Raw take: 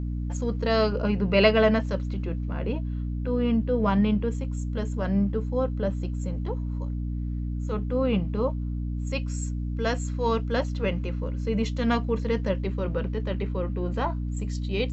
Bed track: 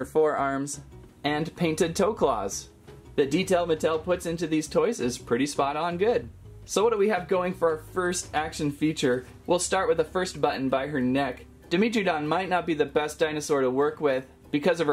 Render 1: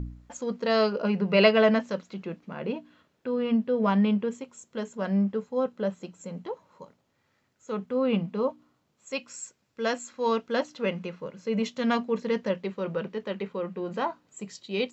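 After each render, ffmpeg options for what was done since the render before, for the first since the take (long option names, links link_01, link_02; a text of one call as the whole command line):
ffmpeg -i in.wav -af "bandreject=frequency=60:width_type=h:width=4,bandreject=frequency=120:width_type=h:width=4,bandreject=frequency=180:width_type=h:width=4,bandreject=frequency=240:width_type=h:width=4,bandreject=frequency=300:width_type=h:width=4" out.wav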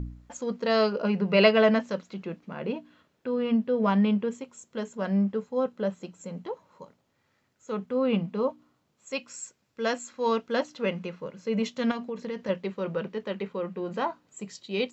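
ffmpeg -i in.wav -filter_complex "[0:a]asettb=1/sr,asplit=3[link_01][link_02][link_03];[link_01]atrim=end=11.914[link_04];[link_02]atrim=start=11.91:end=12.49,asetpts=PTS-STARTPTS,afade=type=in:duration=0.004:curve=qsin,afade=type=out:start_time=0.576:duration=0.004:curve=qsin,acompressor=threshold=-30dB:ratio=5:attack=3.2:release=140:knee=1:detection=peak[link_05];[link_03]atrim=start=12.486[link_06];[link_04][link_05]acrossfade=duration=0.004:curve1=hsin:curve2=qsin[link_07];[link_07][link_06]acrossfade=duration=0.004:curve1=qsin:curve2=hsin" out.wav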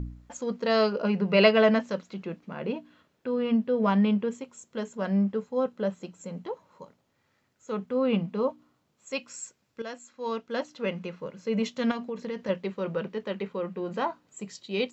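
ffmpeg -i in.wav -filter_complex "[0:a]asplit=2[link_01][link_02];[link_01]atrim=end=9.82,asetpts=PTS-STARTPTS,afade=type=out:start_time=9.816:duration=0.004:curve=hsin:silence=0.237137[link_03];[link_02]atrim=start=9.82,asetpts=PTS-STARTPTS,afade=type=in:duration=1.42:silence=0.237137[link_04];[link_03][link_04]concat=n=2:v=0:a=1" out.wav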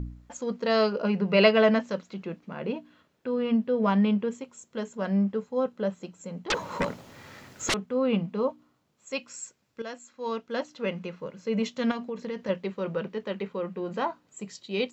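ffmpeg -i in.wav -filter_complex "[0:a]asettb=1/sr,asplit=3[link_01][link_02][link_03];[link_01]atrim=end=6.504[link_04];[link_02]atrim=start=6.5:end=7.74,asetpts=PTS-STARTPTS,afade=type=in:duration=0.004:curve=qsin,afade=type=out:start_time=1.236:duration=0.004:curve=qsin,aeval=exprs='0.0891*sin(PI/2*10*val(0)/0.0891)':channel_layout=same[link_05];[link_03]atrim=start=7.736[link_06];[link_04][link_05]acrossfade=duration=0.004:curve1=hsin:curve2=qsin[link_07];[link_07][link_06]acrossfade=duration=0.004:curve1=qsin:curve2=hsin" out.wav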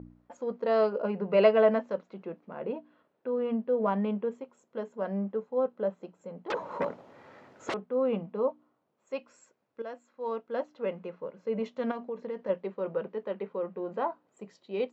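ffmpeg -i in.wav -af "bandpass=frequency=600:width_type=q:width=0.88:csg=0" out.wav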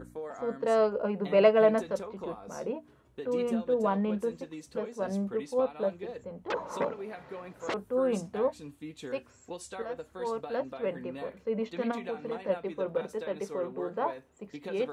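ffmpeg -i in.wav -i bed.wav -filter_complex "[1:a]volume=-17.5dB[link_01];[0:a][link_01]amix=inputs=2:normalize=0" out.wav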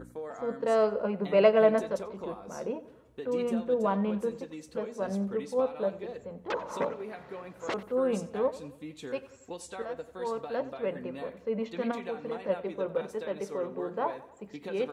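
ffmpeg -i in.wav -filter_complex "[0:a]asplit=2[link_01][link_02];[link_02]adelay=91,lowpass=frequency=5000:poles=1,volume=-16.5dB,asplit=2[link_03][link_04];[link_04]adelay=91,lowpass=frequency=5000:poles=1,volume=0.53,asplit=2[link_05][link_06];[link_06]adelay=91,lowpass=frequency=5000:poles=1,volume=0.53,asplit=2[link_07][link_08];[link_08]adelay=91,lowpass=frequency=5000:poles=1,volume=0.53,asplit=2[link_09][link_10];[link_10]adelay=91,lowpass=frequency=5000:poles=1,volume=0.53[link_11];[link_01][link_03][link_05][link_07][link_09][link_11]amix=inputs=6:normalize=0" out.wav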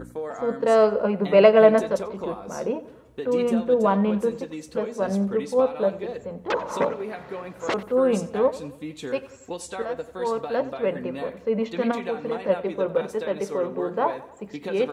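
ffmpeg -i in.wav -af "volume=7.5dB,alimiter=limit=-3dB:level=0:latency=1" out.wav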